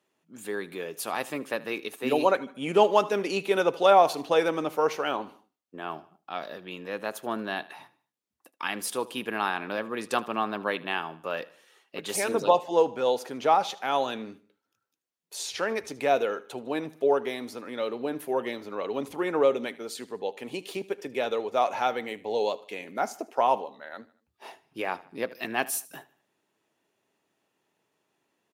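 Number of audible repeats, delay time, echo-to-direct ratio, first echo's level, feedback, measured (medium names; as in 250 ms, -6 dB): 3, 76 ms, -19.0 dB, -20.0 dB, 45%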